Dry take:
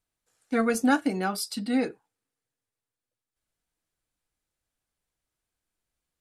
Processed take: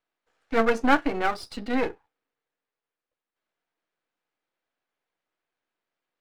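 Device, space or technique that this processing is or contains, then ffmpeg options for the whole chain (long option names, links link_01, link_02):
crystal radio: -af "highpass=340,lowpass=2600,aeval=exprs='if(lt(val(0),0),0.251*val(0),val(0))':channel_layout=same,volume=8.5dB"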